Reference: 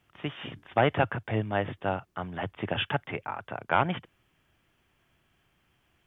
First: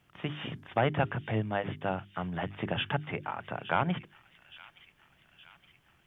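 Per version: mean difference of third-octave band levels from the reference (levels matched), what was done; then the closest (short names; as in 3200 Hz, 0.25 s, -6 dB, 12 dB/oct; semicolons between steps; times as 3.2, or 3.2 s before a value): 2.5 dB: bell 160 Hz +6 dB 0.81 oct; notches 50/100/150/200/250/300/350/400 Hz; in parallel at +1.5 dB: compressor, threshold -34 dBFS, peak gain reduction 16 dB; on the sum: thin delay 0.868 s, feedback 57%, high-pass 2600 Hz, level -11 dB; gain -6 dB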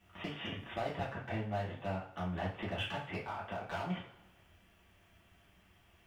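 9.0 dB: compressor 3:1, threshold -41 dBFS, peak gain reduction 17.5 dB; overloaded stage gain 33.5 dB; two-slope reverb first 0.4 s, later 1.5 s, from -18 dB, DRR -7 dB; gain -4 dB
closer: first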